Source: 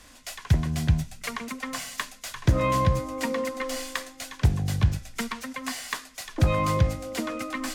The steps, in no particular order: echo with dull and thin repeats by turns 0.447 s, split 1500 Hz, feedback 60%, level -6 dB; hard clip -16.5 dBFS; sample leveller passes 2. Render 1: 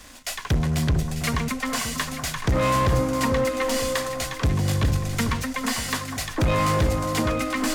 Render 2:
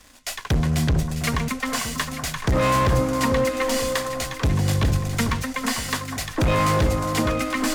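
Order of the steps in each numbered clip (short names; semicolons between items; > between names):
hard clip > sample leveller > echo with dull and thin repeats by turns; sample leveller > hard clip > echo with dull and thin repeats by turns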